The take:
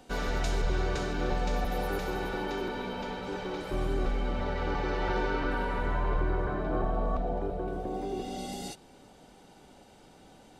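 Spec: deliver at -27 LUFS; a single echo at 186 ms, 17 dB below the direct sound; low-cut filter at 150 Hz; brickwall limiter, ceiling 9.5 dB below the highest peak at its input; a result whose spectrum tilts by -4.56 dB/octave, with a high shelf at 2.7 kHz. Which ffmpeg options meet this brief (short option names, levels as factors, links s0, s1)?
-af "highpass=150,highshelf=f=2700:g=-7.5,alimiter=level_in=1.88:limit=0.0631:level=0:latency=1,volume=0.531,aecho=1:1:186:0.141,volume=3.55"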